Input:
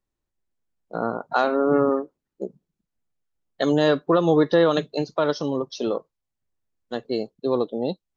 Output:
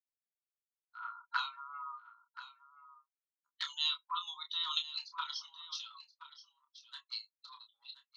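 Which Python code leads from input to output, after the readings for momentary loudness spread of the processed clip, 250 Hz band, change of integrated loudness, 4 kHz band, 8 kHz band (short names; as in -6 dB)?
20 LU, under -40 dB, -15.5 dB, -0.5 dB, n/a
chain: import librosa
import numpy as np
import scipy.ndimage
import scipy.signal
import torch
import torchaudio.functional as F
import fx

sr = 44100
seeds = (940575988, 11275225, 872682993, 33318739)

y = fx.bin_expand(x, sr, power=1.5)
y = fx.high_shelf(y, sr, hz=2800.0, db=8.5)
y = fx.env_flanger(y, sr, rest_ms=9.6, full_db=-19.0)
y = scipy.signal.sosfilt(scipy.signal.cheby1(6, 9, 950.0, 'highpass', fs=sr, output='sos'), y)
y = fx.air_absorb(y, sr, metres=73.0)
y = fx.doubler(y, sr, ms=28.0, db=-7.0)
y = y + 10.0 ** (-14.5 / 20.0) * np.pad(y, (int(1027 * sr / 1000.0), 0))[:len(y)]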